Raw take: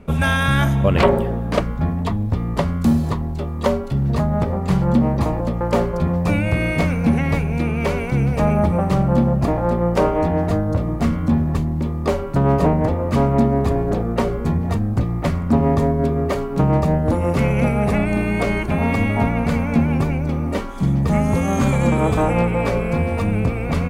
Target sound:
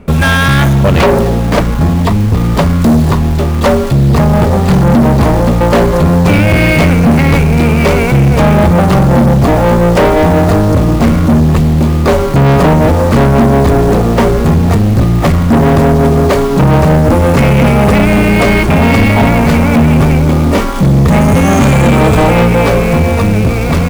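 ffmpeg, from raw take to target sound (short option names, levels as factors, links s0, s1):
-filter_complex "[0:a]dynaudnorm=f=170:g=17:m=2.51,asplit=2[s0][s1];[s1]acrusher=bits=4:mix=0:aa=0.000001,volume=0.708[s2];[s0][s2]amix=inputs=2:normalize=0,asoftclip=type=tanh:threshold=0.251,volume=2.51"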